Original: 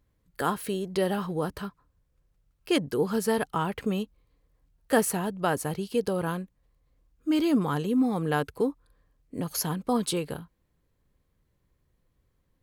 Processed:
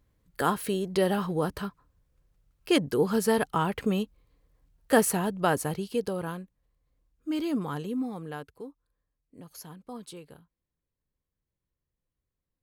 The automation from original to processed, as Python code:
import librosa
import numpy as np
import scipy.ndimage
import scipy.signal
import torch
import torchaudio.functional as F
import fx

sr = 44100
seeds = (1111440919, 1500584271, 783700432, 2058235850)

y = fx.gain(x, sr, db=fx.line((5.52, 1.5), (6.38, -5.5), (7.87, -5.5), (8.62, -15.5)))